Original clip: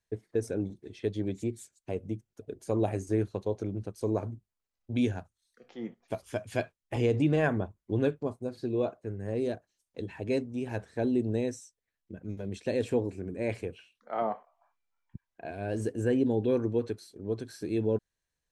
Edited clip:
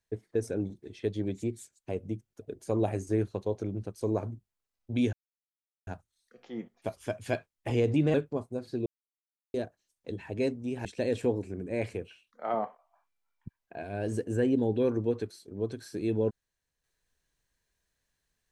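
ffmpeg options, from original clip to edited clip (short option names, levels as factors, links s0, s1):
-filter_complex "[0:a]asplit=6[s0][s1][s2][s3][s4][s5];[s0]atrim=end=5.13,asetpts=PTS-STARTPTS,afade=t=out:st=5.126:d=0.004:c=hsin,apad=pad_dur=0.74[s6];[s1]atrim=start=5.13:end=7.402,asetpts=PTS-STARTPTS,afade=t=in:d=0.004:c=hsin[s7];[s2]atrim=start=8.038:end=8.76,asetpts=PTS-STARTPTS,afade=t=out:st=0.718:d=0.004:c=hsin[s8];[s3]atrim=start=8.76:end=9.44,asetpts=PTS-STARTPTS,volume=0[s9];[s4]atrim=start=9.44:end=10.752,asetpts=PTS-STARTPTS,afade=t=in:d=0.004:c=hsin[s10];[s5]atrim=start=12.528[s11];[s6][s7]concat=n=2:v=0:a=1[s12];[s8][s9][s10]concat=n=3:v=0:a=1[s13];[s12][s13]acrossfade=d=0.004:c1=hsin:c2=hsin[s14];[s14][s11]acrossfade=d=0.004:c1=hsin:c2=hsin"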